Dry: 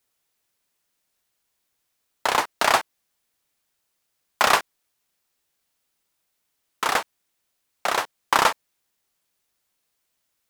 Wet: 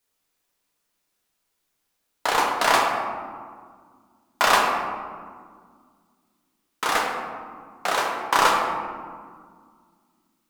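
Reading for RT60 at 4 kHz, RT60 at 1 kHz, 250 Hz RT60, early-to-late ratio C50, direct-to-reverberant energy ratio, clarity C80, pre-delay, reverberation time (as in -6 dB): 0.80 s, 1.8 s, 2.9 s, 2.0 dB, -1.5 dB, 3.5 dB, 4 ms, 1.9 s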